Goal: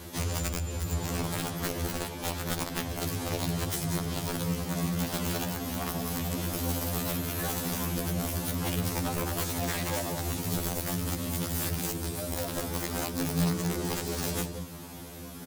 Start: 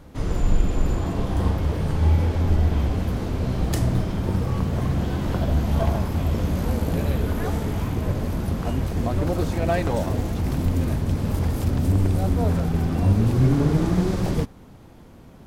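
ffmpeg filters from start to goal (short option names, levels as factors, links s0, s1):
-filter_complex "[0:a]crystalizer=i=4.5:c=0,acompressor=threshold=0.0282:ratio=5,bandreject=f=50:t=h:w=6,bandreject=f=100:t=h:w=6,bandreject=f=150:t=h:w=6,bandreject=f=200:t=h:w=6,bandreject=f=250:t=h:w=6,bandreject=f=300:t=h:w=6,afreqshift=41,asplit=2[s0][s1];[s1]adelay=186.6,volume=0.447,highshelf=f=4000:g=-4.2[s2];[s0][s2]amix=inputs=2:normalize=0,aeval=exprs='(mod(15.8*val(0)+1,2)-1)/15.8':c=same,afftfilt=real='re*2*eq(mod(b,4),0)':imag='im*2*eq(mod(b,4),0)':win_size=2048:overlap=0.75,volume=1.68"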